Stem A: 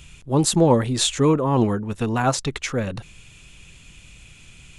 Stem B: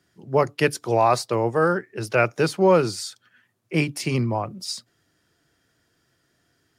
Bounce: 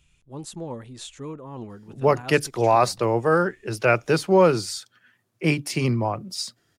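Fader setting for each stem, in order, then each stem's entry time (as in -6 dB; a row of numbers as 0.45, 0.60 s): -18.0, +0.5 dB; 0.00, 1.70 s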